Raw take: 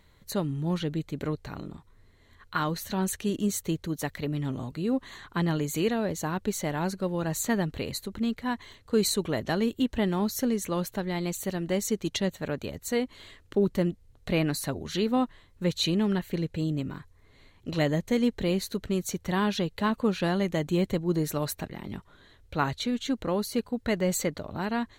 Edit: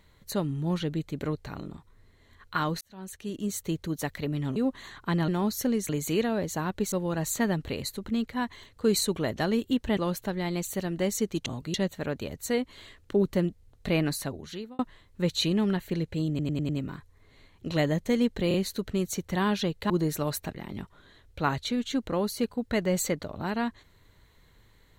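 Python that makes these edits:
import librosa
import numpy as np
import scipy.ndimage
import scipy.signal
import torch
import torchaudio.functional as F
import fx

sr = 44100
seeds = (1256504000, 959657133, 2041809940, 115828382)

y = fx.edit(x, sr, fx.fade_in_span(start_s=2.81, length_s=1.04),
    fx.move(start_s=4.56, length_s=0.28, to_s=12.16),
    fx.cut(start_s=6.59, length_s=0.42),
    fx.move(start_s=10.06, length_s=0.61, to_s=5.56),
    fx.fade_out_span(start_s=14.53, length_s=0.68),
    fx.stutter(start_s=16.71, slice_s=0.1, count=5),
    fx.stutter(start_s=18.5, slice_s=0.03, count=3),
    fx.cut(start_s=19.86, length_s=1.19), tone=tone)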